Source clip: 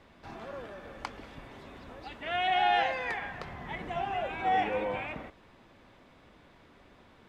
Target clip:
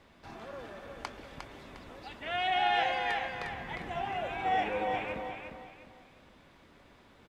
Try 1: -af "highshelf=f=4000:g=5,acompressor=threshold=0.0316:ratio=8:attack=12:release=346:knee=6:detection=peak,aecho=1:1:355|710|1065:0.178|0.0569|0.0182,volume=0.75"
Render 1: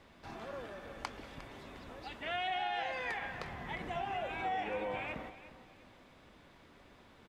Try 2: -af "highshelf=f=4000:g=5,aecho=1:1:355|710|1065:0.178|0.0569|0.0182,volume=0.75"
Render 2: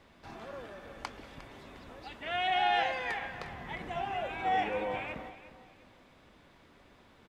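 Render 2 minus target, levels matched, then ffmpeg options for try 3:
echo-to-direct -9 dB
-af "highshelf=f=4000:g=5,aecho=1:1:355|710|1065|1420:0.501|0.16|0.0513|0.0164,volume=0.75"

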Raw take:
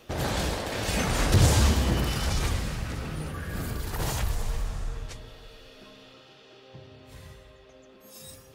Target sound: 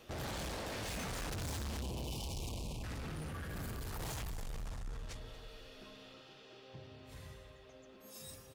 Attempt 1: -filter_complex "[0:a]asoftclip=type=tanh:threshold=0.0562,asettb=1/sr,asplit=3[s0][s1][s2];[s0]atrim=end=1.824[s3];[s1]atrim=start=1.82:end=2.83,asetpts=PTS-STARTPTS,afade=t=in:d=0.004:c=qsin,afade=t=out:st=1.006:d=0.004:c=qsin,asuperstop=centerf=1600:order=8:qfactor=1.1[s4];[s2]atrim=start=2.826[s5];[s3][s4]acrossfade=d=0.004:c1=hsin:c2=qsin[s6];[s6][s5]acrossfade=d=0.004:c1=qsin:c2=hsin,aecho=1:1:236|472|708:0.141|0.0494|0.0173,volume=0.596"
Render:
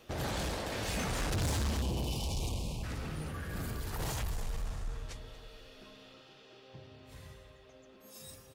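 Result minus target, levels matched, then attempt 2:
saturation: distortion -5 dB
-filter_complex "[0:a]asoftclip=type=tanh:threshold=0.0188,asettb=1/sr,asplit=3[s0][s1][s2];[s0]atrim=end=1.824[s3];[s1]atrim=start=1.82:end=2.83,asetpts=PTS-STARTPTS,afade=t=in:d=0.004:c=qsin,afade=t=out:st=1.006:d=0.004:c=qsin,asuperstop=centerf=1600:order=8:qfactor=1.1[s4];[s2]atrim=start=2.826[s5];[s3][s4]acrossfade=d=0.004:c1=hsin:c2=qsin[s6];[s6][s5]acrossfade=d=0.004:c1=qsin:c2=hsin,aecho=1:1:236|472|708:0.141|0.0494|0.0173,volume=0.596"

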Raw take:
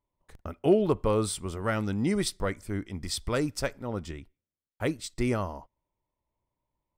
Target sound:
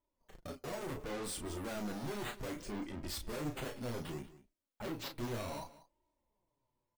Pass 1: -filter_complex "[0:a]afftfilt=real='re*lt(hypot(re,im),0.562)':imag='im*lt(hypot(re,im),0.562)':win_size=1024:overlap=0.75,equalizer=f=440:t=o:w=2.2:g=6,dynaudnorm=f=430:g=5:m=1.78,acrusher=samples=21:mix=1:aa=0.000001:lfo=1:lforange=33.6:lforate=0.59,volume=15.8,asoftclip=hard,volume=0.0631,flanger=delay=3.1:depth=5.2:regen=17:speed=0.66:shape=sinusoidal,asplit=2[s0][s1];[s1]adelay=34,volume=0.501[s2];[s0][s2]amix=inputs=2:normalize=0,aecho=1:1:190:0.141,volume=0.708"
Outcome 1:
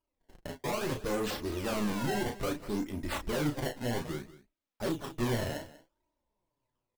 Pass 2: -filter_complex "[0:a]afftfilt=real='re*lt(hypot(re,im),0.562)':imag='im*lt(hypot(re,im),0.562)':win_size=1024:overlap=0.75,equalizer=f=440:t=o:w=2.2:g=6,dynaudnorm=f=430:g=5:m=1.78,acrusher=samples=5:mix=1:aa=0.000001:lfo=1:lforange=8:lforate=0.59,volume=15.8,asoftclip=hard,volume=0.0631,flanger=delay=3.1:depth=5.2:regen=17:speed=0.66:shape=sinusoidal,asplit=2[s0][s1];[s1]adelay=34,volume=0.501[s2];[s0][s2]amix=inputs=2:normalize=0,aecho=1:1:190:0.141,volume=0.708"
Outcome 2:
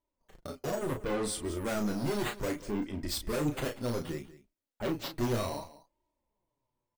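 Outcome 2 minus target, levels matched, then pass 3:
overload inside the chain: distortion -4 dB
-filter_complex "[0:a]afftfilt=real='re*lt(hypot(re,im),0.562)':imag='im*lt(hypot(re,im),0.562)':win_size=1024:overlap=0.75,equalizer=f=440:t=o:w=2.2:g=6,dynaudnorm=f=430:g=5:m=1.78,acrusher=samples=5:mix=1:aa=0.000001:lfo=1:lforange=8:lforate=0.59,volume=50.1,asoftclip=hard,volume=0.02,flanger=delay=3.1:depth=5.2:regen=17:speed=0.66:shape=sinusoidal,asplit=2[s0][s1];[s1]adelay=34,volume=0.501[s2];[s0][s2]amix=inputs=2:normalize=0,aecho=1:1:190:0.141,volume=0.708"

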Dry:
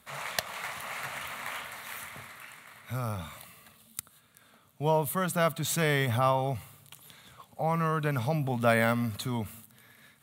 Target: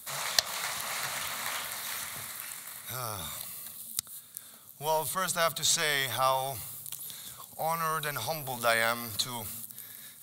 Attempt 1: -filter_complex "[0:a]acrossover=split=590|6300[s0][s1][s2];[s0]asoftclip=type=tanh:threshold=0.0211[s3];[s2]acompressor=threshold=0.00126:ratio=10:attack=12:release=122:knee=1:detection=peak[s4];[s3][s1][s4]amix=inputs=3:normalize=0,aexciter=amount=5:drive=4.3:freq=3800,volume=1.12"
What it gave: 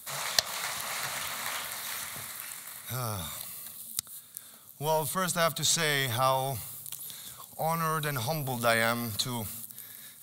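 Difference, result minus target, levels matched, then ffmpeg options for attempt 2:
saturation: distortion -5 dB
-filter_complex "[0:a]acrossover=split=590|6300[s0][s1][s2];[s0]asoftclip=type=tanh:threshold=0.00668[s3];[s2]acompressor=threshold=0.00126:ratio=10:attack=12:release=122:knee=1:detection=peak[s4];[s3][s1][s4]amix=inputs=3:normalize=0,aexciter=amount=5:drive=4.3:freq=3800,volume=1.12"

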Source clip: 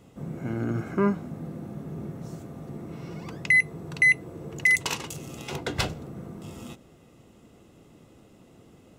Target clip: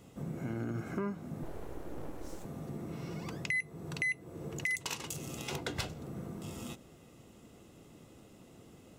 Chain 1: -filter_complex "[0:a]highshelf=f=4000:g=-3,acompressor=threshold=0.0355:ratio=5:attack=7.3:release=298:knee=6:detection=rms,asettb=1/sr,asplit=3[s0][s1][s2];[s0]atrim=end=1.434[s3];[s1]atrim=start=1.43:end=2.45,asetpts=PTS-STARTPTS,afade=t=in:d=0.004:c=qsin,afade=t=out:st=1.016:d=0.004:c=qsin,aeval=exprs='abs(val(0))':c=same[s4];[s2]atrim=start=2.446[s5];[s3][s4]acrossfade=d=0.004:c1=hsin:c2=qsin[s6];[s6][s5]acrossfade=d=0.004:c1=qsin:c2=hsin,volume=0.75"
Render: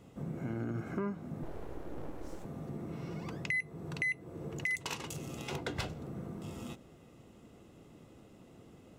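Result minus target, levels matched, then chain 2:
8 kHz band -4.5 dB
-filter_complex "[0:a]highshelf=f=4000:g=5,acompressor=threshold=0.0355:ratio=5:attack=7.3:release=298:knee=6:detection=rms,asettb=1/sr,asplit=3[s0][s1][s2];[s0]atrim=end=1.434[s3];[s1]atrim=start=1.43:end=2.45,asetpts=PTS-STARTPTS,afade=t=in:d=0.004:c=qsin,afade=t=out:st=1.016:d=0.004:c=qsin,aeval=exprs='abs(val(0))':c=same[s4];[s2]atrim=start=2.446[s5];[s3][s4]acrossfade=d=0.004:c1=hsin:c2=qsin[s6];[s6][s5]acrossfade=d=0.004:c1=qsin:c2=hsin,volume=0.75"

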